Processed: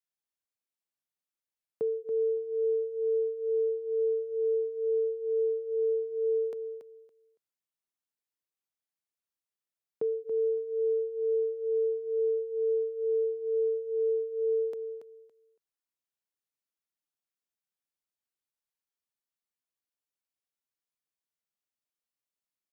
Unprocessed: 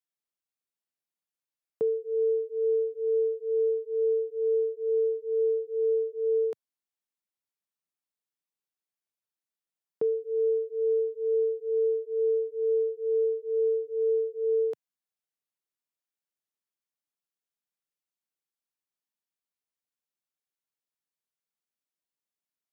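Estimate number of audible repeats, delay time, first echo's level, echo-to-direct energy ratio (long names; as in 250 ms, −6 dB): 2, 281 ms, −9.0 dB, −9.0 dB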